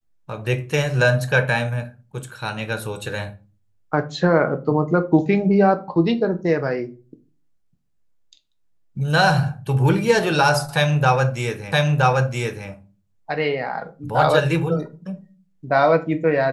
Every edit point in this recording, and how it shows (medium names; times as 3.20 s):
11.72 s: repeat of the last 0.97 s